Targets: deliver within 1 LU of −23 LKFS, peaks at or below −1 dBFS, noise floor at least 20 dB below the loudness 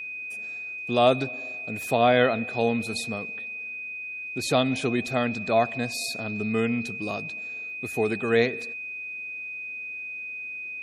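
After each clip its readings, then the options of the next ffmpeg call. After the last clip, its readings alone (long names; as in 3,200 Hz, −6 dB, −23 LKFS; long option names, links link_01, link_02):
interfering tone 2,500 Hz; level of the tone −33 dBFS; integrated loudness −27.0 LKFS; sample peak −6.5 dBFS; target loudness −23.0 LKFS
→ -af "bandreject=frequency=2500:width=30"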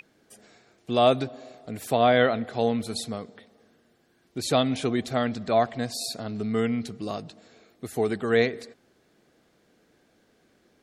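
interfering tone none found; integrated loudness −26.0 LKFS; sample peak −7.0 dBFS; target loudness −23.0 LKFS
→ -af "volume=3dB"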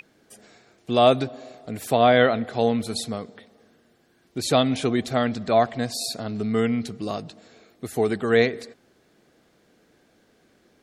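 integrated loudness −23.0 LKFS; sample peak −4.0 dBFS; background noise floor −62 dBFS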